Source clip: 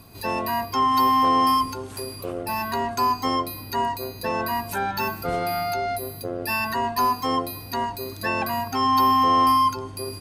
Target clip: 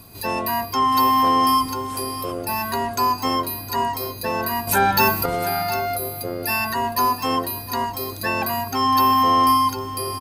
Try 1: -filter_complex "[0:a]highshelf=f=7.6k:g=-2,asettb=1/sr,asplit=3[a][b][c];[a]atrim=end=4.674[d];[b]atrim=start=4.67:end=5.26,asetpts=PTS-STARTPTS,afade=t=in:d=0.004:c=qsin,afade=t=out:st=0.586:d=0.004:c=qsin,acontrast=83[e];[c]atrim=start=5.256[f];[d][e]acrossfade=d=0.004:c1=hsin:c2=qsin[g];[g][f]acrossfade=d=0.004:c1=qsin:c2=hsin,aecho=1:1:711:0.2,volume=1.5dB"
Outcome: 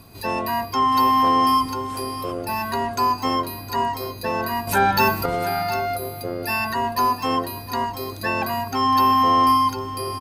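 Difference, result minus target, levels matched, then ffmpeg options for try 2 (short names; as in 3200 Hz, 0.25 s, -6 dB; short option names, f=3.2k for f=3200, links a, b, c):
8000 Hz band -5.0 dB
-filter_complex "[0:a]highshelf=f=7.6k:g=7.5,asettb=1/sr,asplit=3[a][b][c];[a]atrim=end=4.674[d];[b]atrim=start=4.67:end=5.26,asetpts=PTS-STARTPTS,afade=t=in:d=0.004:c=qsin,afade=t=out:st=0.586:d=0.004:c=qsin,acontrast=83[e];[c]atrim=start=5.256[f];[d][e]acrossfade=d=0.004:c1=hsin:c2=qsin[g];[g][f]acrossfade=d=0.004:c1=qsin:c2=hsin,aecho=1:1:711:0.2,volume=1.5dB"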